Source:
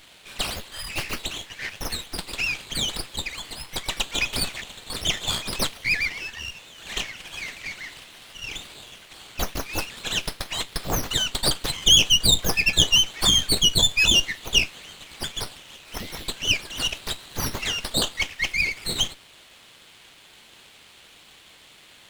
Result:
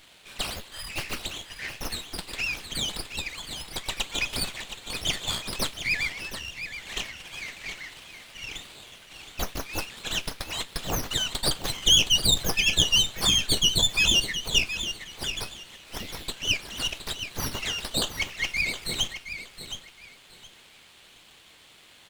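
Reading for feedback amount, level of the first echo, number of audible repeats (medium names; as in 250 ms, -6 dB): 22%, -10.0 dB, 2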